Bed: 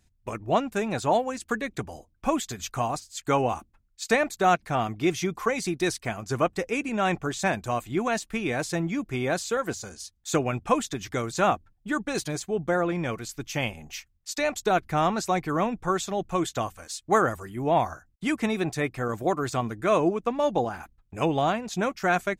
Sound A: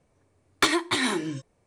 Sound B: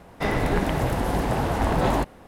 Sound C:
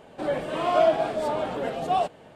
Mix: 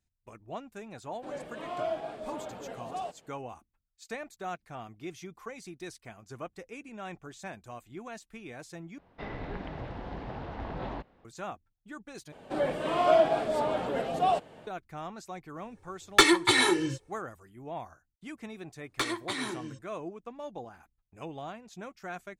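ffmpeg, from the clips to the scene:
ffmpeg -i bed.wav -i cue0.wav -i cue1.wav -i cue2.wav -filter_complex "[3:a]asplit=2[link_01][link_02];[1:a]asplit=2[link_03][link_04];[0:a]volume=-16.5dB[link_05];[2:a]lowpass=frequency=4300:width=0.5412,lowpass=frequency=4300:width=1.3066[link_06];[link_03]aecho=1:1:2.3:0.98[link_07];[link_05]asplit=3[link_08][link_09][link_10];[link_08]atrim=end=8.984[link_11];[link_06]atrim=end=2.27,asetpts=PTS-STARTPTS,volume=-15.5dB[link_12];[link_09]atrim=start=11.246:end=12.324[link_13];[link_02]atrim=end=2.35,asetpts=PTS-STARTPTS,volume=-2dB[link_14];[link_10]atrim=start=14.666[link_15];[link_01]atrim=end=2.35,asetpts=PTS-STARTPTS,volume=-13dB,afade=type=in:duration=0.004:curve=hsin,afade=type=out:start_time=2.346:duration=0.004:curve=hsin,adelay=1040[link_16];[link_07]atrim=end=1.66,asetpts=PTS-STARTPTS,volume=-0.5dB,afade=type=in:duration=0.004:curve=hsin,afade=type=out:start_time=1.656:duration=0.004:curve=hsin,adelay=686196S[link_17];[link_04]atrim=end=1.66,asetpts=PTS-STARTPTS,volume=-9.5dB,afade=type=in:duration=0.004:curve=hsin,afade=type=out:start_time=1.656:duration=0.004:curve=hsin,adelay=18370[link_18];[link_11][link_12]acrossfade=duration=0.004:curve1=hsin:curve2=hsin[link_19];[link_19][link_13]acrossfade=duration=0.004:curve1=hsin:curve2=hsin[link_20];[link_20][link_14]acrossfade=duration=0.004:curve1=hsin:curve2=hsin[link_21];[link_21][link_15]acrossfade=duration=0.004:curve1=hsin:curve2=hsin[link_22];[link_22][link_16][link_17][link_18]amix=inputs=4:normalize=0" out.wav

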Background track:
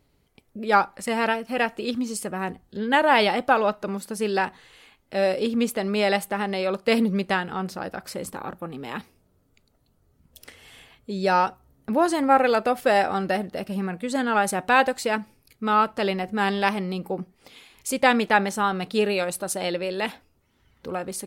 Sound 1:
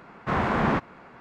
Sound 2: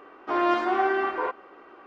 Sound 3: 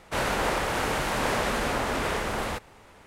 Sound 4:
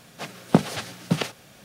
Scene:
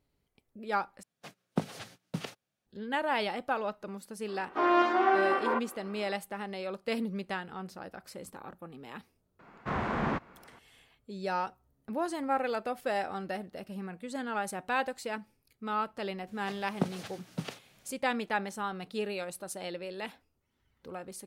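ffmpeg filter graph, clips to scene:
ffmpeg -i bed.wav -i cue0.wav -i cue1.wav -i cue2.wav -i cue3.wav -filter_complex "[4:a]asplit=2[link_01][link_02];[0:a]volume=-12dB[link_03];[link_01]agate=range=-23dB:threshold=-40dB:ratio=16:release=100:detection=peak[link_04];[2:a]highpass=130[link_05];[link_03]asplit=2[link_06][link_07];[link_06]atrim=end=1.034[link_08];[link_04]atrim=end=1.64,asetpts=PTS-STARTPTS,volume=-13dB[link_09];[link_07]atrim=start=2.666[link_10];[link_05]atrim=end=1.86,asetpts=PTS-STARTPTS,volume=-1.5dB,afade=type=in:duration=0.004:curve=hsin,afade=type=out:start_time=1.856:duration=0.004:curve=hsin,adelay=4280[link_11];[1:a]atrim=end=1.2,asetpts=PTS-STARTPTS,volume=-7.5dB,afade=type=in:duration=0.004:curve=hsin,afade=type=out:start_time=1.196:duration=0.004:curve=hsin,adelay=9390[link_12];[link_02]atrim=end=1.64,asetpts=PTS-STARTPTS,volume=-13.5dB,afade=type=in:duration=0.004:curve=hsin,afade=type=out:start_time=1.636:duration=0.004:curve=hsin,adelay=16270[link_13];[link_08][link_09]acrossfade=duration=0.004:curve1=hsin:curve2=hsin[link_14];[link_14][link_10]acrossfade=duration=0.004:curve1=hsin:curve2=hsin[link_15];[link_15][link_11][link_12][link_13]amix=inputs=4:normalize=0" out.wav

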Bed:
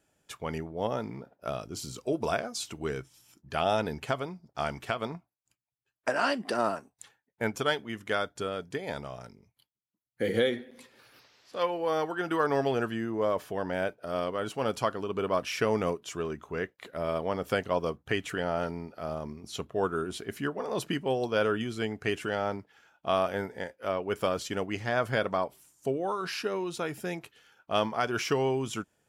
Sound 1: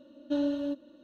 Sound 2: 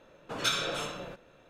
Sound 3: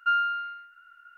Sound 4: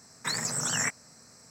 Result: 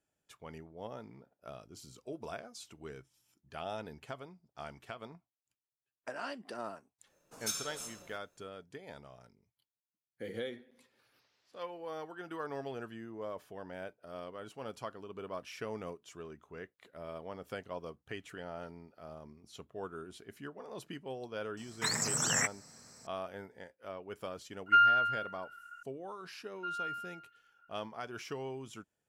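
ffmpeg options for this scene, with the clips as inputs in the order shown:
ffmpeg -i bed.wav -i cue0.wav -i cue1.wav -i cue2.wav -i cue3.wav -filter_complex "[3:a]asplit=2[link_01][link_02];[0:a]volume=-13.5dB[link_03];[2:a]aexciter=amount=9.9:drive=2.7:freq=5000[link_04];[link_01]aecho=1:1:2.1:0.56[link_05];[link_02]aecho=1:1:152:0.596[link_06];[link_04]atrim=end=1.49,asetpts=PTS-STARTPTS,volume=-16.5dB,afade=type=in:duration=0.1,afade=type=out:start_time=1.39:duration=0.1,adelay=7020[link_07];[4:a]atrim=end=1.5,asetpts=PTS-STARTPTS,volume=-2dB,afade=type=in:duration=0.004:curve=hsin,afade=type=out:start_time=1.496:duration=0.004:curve=hsin,adelay=21570[link_08];[link_05]atrim=end=1.17,asetpts=PTS-STARTPTS,volume=-2.5dB,afade=type=in:duration=0.004:curve=hsin,afade=type=out:start_time=1.166:duration=0.004:curve=hsin,adelay=24660[link_09];[link_06]atrim=end=1.17,asetpts=PTS-STARTPTS,volume=-16dB,afade=type=in:duration=0.004:curve=hsin,afade=type=out:start_time=1.166:duration=0.004:curve=hsin,adelay=26570[link_10];[link_03][link_07][link_08][link_09][link_10]amix=inputs=5:normalize=0" out.wav

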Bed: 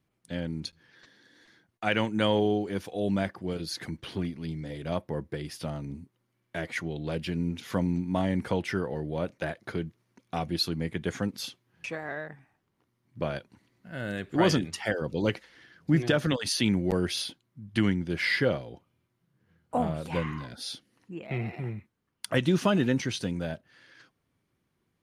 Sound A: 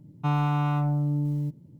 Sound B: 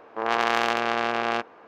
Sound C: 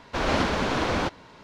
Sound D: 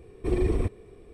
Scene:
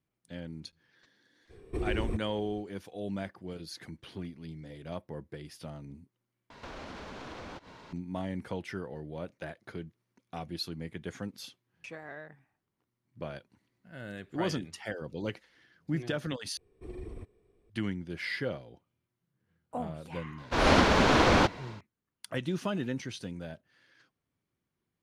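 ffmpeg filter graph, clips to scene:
ffmpeg -i bed.wav -i cue0.wav -i cue1.wav -i cue2.wav -i cue3.wav -filter_complex "[4:a]asplit=2[link_01][link_02];[3:a]asplit=2[link_03][link_04];[0:a]volume=-8.5dB[link_05];[link_01]alimiter=limit=-20dB:level=0:latency=1:release=73[link_06];[link_03]acompressor=threshold=-40dB:ratio=6:attack=3.2:release=140:knee=1:detection=peak[link_07];[link_04]dynaudnorm=framelen=120:gausssize=3:maxgain=9dB[link_08];[link_05]asplit=3[link_09][link_10][link_11];[link_09]atrim=end=6.504[link_12];[link_07]atrim=end=1.43,asetpts=PTS-STARTPTS,volume=-2dB[link_13];[link_10]atrim=start=7.926:end=16.574[link_14];[link_02]atrim=end=1.13,asetpts=PTS-STARTPTS,volume=-18dB[link_15];[link_11]atrim=start=17.696[link_16];[link_06]atrim=end=1.13,asetpts=PTS-STARTPTS,volume=-4dB,afade=type=in:duration=0.02,afade=type=out:start_time=1.11:duration=0.02,adelay=1490[link_17];[link_08]atrim=end=1.43,asetpts=PTS-STARTPTS,volume=-5.5dB,afade=type=in:duration=0.004:curve=hsin,afade=type=out:start_time=1.426:duration=0.004:curve=hsin,adelay=20380[link_18];[link_12][link_13]acrossfade=duration=0.004:curve1=hsin:curve2=hsin[link_19];[link_19][link_14]acrossfade=duration=0.004:curve1=hsin:curve2=hsin[link_20];[link_20][link_15]acrossfade=duration=0.004:curve1=hsin:curve2=hsin[link_21];[link_21][link_16]acrossfade=duration=0.004:curve1=hsin:curve2=hsin[link_22];[link_22][link_17][link_18]amix=inputs=3:normalize=0" out.wav

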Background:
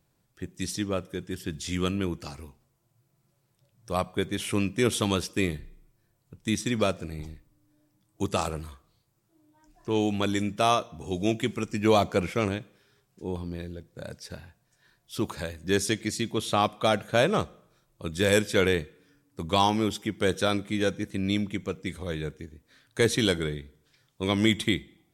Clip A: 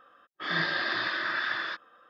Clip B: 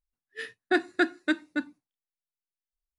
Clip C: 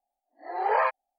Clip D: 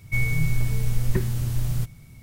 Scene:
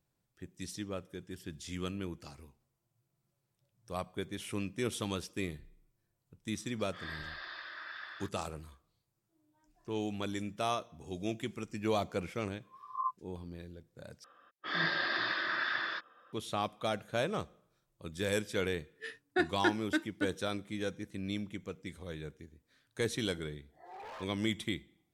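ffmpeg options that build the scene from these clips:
ffmpeg -i bed.wav -i cue0.wav -i cue1.wav -i cue2.wav -filter_complex "[1:a]asplit=2[link_01][link_02];[3:a]asplit=2[link_03][link_04];[0:a]volume=-10.5dB[link_05];[link_01]highpass=560[link_06];[link_03]asuperpass=centerf=1100:order=20:qfactor=6.4[link_07];[link_04]asoftclip=type=hard:threshold=-26.5dB[link_08];[link_05]asplit=2[link_09][link_10];[link_09]atrim=end=14.244[link_11];[link_02]atrim=end=2.09,asetpts=PTS-STARTPTS,volume=-3.5dB[link_12];[link_10]atrim=start=16.326[link_13];[link_06]atrim=end=2.09,asetpts=PTS-STARTPTS,volume=-15dB,afade=type=in:duration=0.004:curve=hsin,afade=type=out:start_time=2.086:duration=0.004:curve=hsin,adelay=6520[link_14];[link_07]atrim=end=1.18,asetpts=PTS-STARTPTS,volume=-4dB,afade=type=in:duration=0.004:curve=hsin,afade=type=out:start_time=1.176:duration=0.004:curve=hsin,adelay=12190[link_15];[2:a]atrim=end=2.98,asetpts=PTS-STARTPTS,volume=-6dB,afade=type=in:duration=0.004:curve=hsin,afade=type=out:start_time=2.976:duration=0.004:curve=hsin,adelay=18650[link_16];[link_08]atrim=end=1.18,asetpts=PTS-STARTPTS,volume=-18dB,afade=type=in:duration=0.004:curve=hsin,afade=type=out:start_time=1.176:duration=0.004:curve=hsin,adelay=23340[link_17];[link_11][link_12]acrossfade=duration=0.004:curve1=hsin:curve2=hsin[link_18];[link_18][link_13]acrossfade=duration=0.004:curve1=hsin:curve2=hsin[link_19];[link_19][link_14][link_15][link_16][link_17]amix=inputs=5:normalize=0" out.wav

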